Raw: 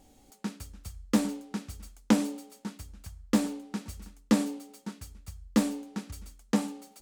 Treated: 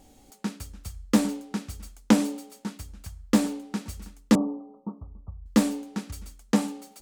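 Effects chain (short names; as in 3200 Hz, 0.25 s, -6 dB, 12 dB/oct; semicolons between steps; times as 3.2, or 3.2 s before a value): 4.35–5.46 steep low-pass 1200 Hz 96 dB/oct; gain +4 dB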